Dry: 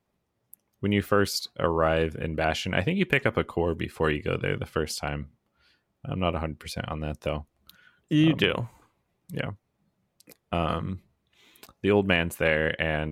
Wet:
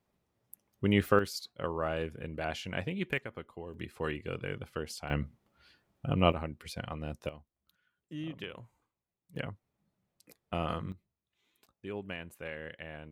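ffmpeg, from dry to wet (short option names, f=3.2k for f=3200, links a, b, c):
-af "asetnsamples=n=441:p=0,asendcmd='1.19 volume volume -10dB;3.18 volume volume -18dB;3.74 volume volume -10dB;5.1 volume volume 1dB;6.32 volume volume -7dB;7.29 volume volume -19dB;9.36 volume volume -7dB;10.92 volume volume -18dB',volume=-2dB"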